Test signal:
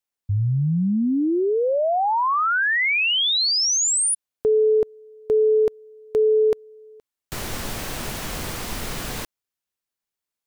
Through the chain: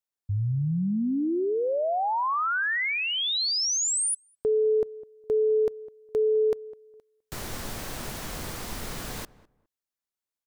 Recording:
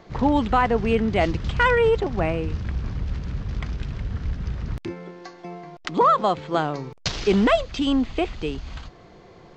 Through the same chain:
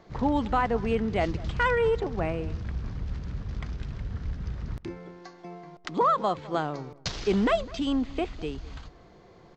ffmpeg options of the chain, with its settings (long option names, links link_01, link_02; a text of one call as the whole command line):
ffmpeg -i in.wav -filter_complex "[0:a]equalizer=frequency=2700:width_type=o:width=0.73:gain=-2.5,asplit=2[link_01][link_02];[link_02]adelay=205,lowpass=frequency=1300:poles=1,volume=-19dB,asplit=2[link_03][link_04];[link_04]adelay=205,lowpass=frequency=1300:poles=1,volume=0.21[link_05];[link_01][link_03][link_05]amix=inputs=3:normalize=0,volume=-5.5dB" out.wav